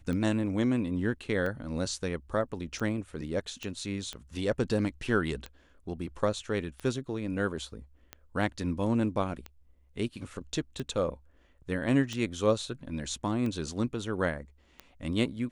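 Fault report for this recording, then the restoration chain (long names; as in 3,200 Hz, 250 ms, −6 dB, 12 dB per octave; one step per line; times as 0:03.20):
scratch tick 45 rpm −23 dBFS
0:03.63: click −24 dBFS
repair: click removal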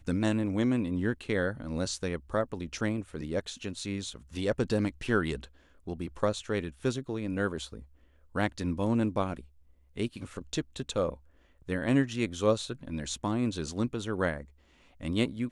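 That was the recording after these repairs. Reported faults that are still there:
0:03.63: click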